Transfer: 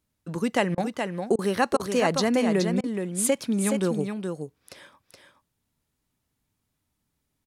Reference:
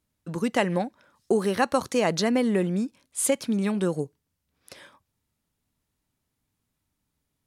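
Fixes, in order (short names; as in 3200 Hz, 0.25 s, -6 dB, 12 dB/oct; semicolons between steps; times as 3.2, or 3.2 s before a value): interpolate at 0.75/1.36/1.77/2.81, 26 ms; inverse comb 0.422 s -6 dB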